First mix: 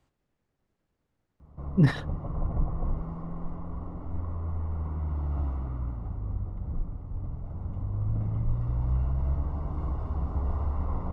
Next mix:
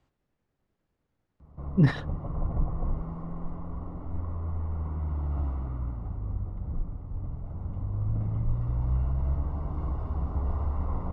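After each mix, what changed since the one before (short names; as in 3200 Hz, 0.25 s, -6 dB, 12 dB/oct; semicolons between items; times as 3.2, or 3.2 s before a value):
master: add air absorption 52 m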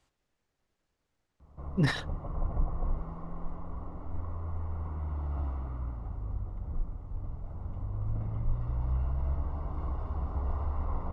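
speech: remove LPF 2100 Hz 6 dB/oct; master: add bell 160 Hz -6.5 dB 2.6 oct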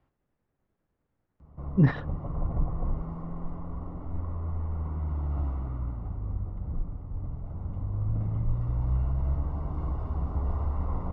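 speech: add LPF 1700 Hz 12 dB/oct; master: add bell 160 Hz +6.5 dB 2.6 oct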